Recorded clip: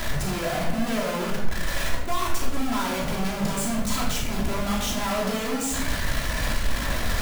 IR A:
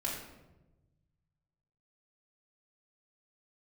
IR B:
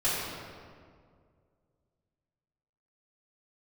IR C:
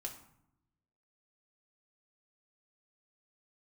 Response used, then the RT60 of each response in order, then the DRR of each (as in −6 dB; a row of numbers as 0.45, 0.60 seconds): A; 1.1, 2.1, 0.75 seconds; −5.0, −12.5, −0.5 decibels